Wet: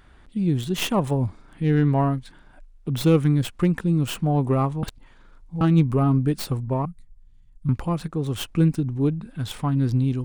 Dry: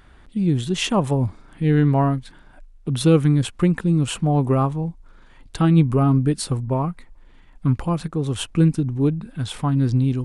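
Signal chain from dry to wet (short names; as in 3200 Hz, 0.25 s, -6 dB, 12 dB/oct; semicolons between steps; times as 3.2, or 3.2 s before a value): tracing distortion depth 0.12 ms; 4.83–5.61 reverse; 6.85–7.69 EQ curve 130 Hz 0 dB, 430 Hz -26 dB, 2200 Hz -21 dB, 6800 Hz -6 dB; gain -2.5 dB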